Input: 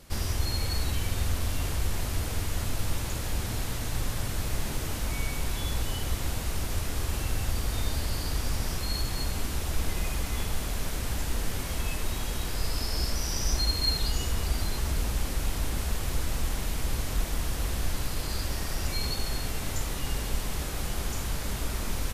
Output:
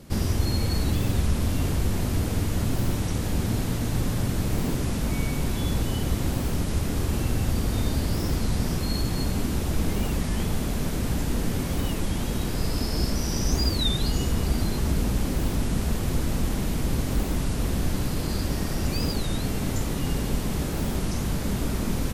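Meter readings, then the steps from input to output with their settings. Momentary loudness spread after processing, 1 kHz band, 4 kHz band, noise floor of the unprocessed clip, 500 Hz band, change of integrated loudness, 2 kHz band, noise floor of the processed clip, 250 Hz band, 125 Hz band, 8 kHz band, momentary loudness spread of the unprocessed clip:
3 LU, +2.5 dB, +0.5 dB, -33 dBFS, +7.0 dB, +4.5 dB, +0.5 dB, -29 dBFS, +11.5 dB, +6.5 dB, 0.0 dB, 3 LU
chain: bell 210 Hz +12.5 dB 2.5 oct; record warp 33 1/3 rpm, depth 250 cents

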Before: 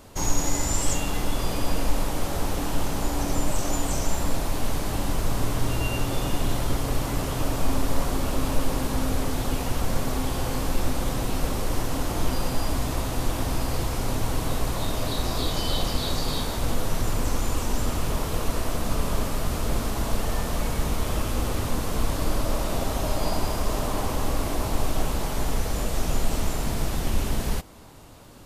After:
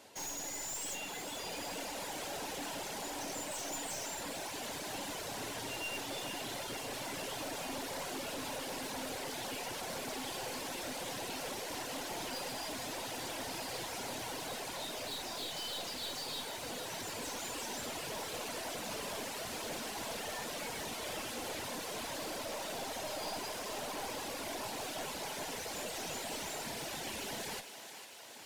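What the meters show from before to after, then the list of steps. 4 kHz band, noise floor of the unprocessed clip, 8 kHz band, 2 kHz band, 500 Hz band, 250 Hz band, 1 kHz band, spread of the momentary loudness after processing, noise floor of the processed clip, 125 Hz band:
-6.0 dB, -29 dBFS, -8.0 dB, -6.5 dB, -11.0 dB, -16.0 dB, -10.0 dB, 2 LU, -43 dBFS, -25.5 dB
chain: weighting filter A; reverb removal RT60 1.8 s; bell 1200 Hz -11 dB 0.31 oct; added harmonics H 4 -16 dB, 8 -28 dB, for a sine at -17.5 dBFS; soft clip -34.5 dBFS, distortion -9 dB; vocal rider 2 s; thinning echo 0.451 s, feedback 73%, level -10 dB; gain -1.5 dB

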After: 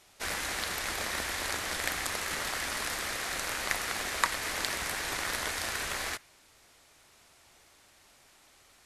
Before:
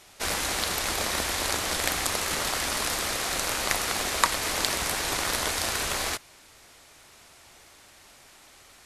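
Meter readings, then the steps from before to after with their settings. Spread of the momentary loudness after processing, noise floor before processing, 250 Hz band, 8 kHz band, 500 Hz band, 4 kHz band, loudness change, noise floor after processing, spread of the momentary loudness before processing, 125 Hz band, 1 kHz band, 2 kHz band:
3 LU, -54 dBFS, -7.5 dB, -7.5 dB, -7.0 dB, -6.5 dB, -5.5 dB, -61 dBFS, 2 LU, -7.5 dB, -6.0 dB, -2.5 dB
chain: dynamic EQ 1800 Hz, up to +6 dB, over -44 dBFS, Q 1.6; gain -7.5 dB

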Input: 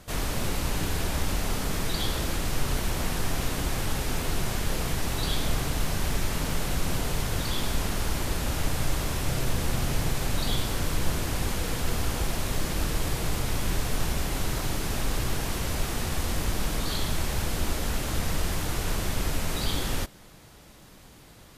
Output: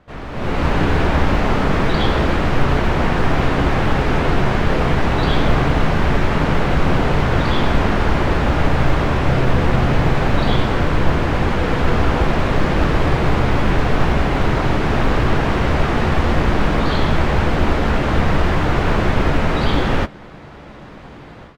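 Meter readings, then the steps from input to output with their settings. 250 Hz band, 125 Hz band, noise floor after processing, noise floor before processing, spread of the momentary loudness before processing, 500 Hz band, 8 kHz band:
+14.5 dB, +12.5 dB, -37 dBFS, -50 dBFS, 1 LU, +15.5 dB, -8.0 dB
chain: LPF 2000 Hz 12 dB/oct; low shelf 100 Hz -6.5 dB; AGC gain up to 16.5 dB; short-mantissa float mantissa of 6-bit; doubler 14 ms -13 dB

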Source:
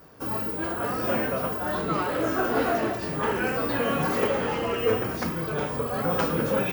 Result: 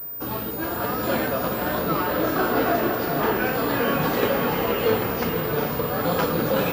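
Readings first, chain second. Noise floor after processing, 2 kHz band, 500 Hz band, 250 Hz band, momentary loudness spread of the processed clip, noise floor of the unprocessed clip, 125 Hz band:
-30 dBFS, +3.0 dB, +3.0 dB, +3.5 dB, 4 LU, -32 dBFS, +3.0 dB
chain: diffused feedback echo 0.478 s, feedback 46%, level -5.5 dB; pulse-width modulation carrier 15000 Hz; gain +2 dB

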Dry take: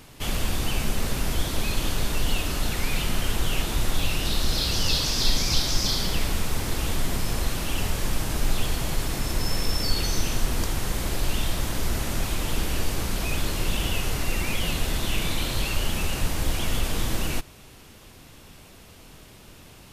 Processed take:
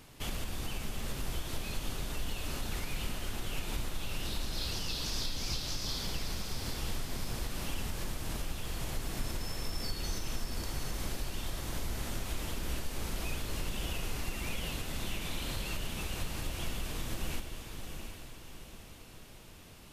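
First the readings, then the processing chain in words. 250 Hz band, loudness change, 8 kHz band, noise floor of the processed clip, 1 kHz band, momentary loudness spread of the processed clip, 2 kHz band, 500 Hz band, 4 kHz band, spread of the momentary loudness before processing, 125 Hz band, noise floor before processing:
-10.5 dB, -11.0 dB, -11.0 dB, -51 dBFS, -10.5 dB, 10 LU, -10.5 dB, -10.5 dB, -11.0 dB, 5 LU, -11.0 dB, -48 dBFS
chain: compressor, threshold -25 dBFS, peak gain reduction 10.5 dB; diffused feedback echo 0.733 s, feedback 44%, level -6.5 dB; gain -7 dB

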